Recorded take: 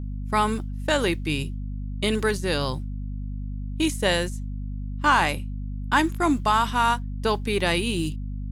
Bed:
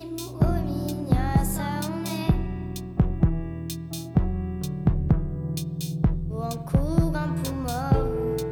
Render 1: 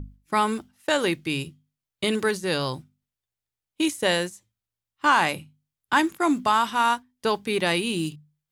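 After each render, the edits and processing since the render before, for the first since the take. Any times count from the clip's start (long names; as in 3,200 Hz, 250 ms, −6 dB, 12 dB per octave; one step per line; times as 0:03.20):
mains-hum notches 50/100/150/200/250 Hz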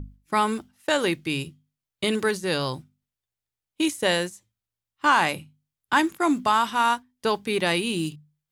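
no processing that can be heard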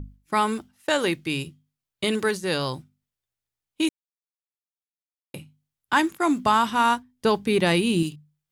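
0:03.89–0:05.34: silence
0:06.45–0:08.03: low-shelf EQ 340 Hz +9 dB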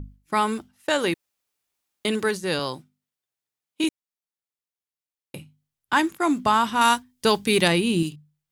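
0:01.14–0:02.05: fill with room tone
0:02.59–0:03.84: high-pass filter 190 Hz
0:06.81–0:07.68: high-shelf EQ 2,500 Hz +11 dB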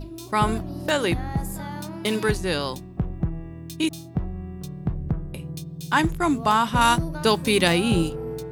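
mix in bed −5 dB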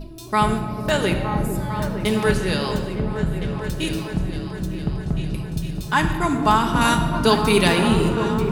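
echo whose low-pass opens from repeat to repeat 455 ms, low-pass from 400 Hz, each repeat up 2 octaves, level −6 dB
rectangular room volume 3,000 cubic metres, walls mixed, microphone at 1.4 metres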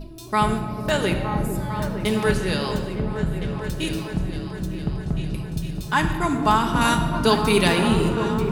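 level −1.5 dB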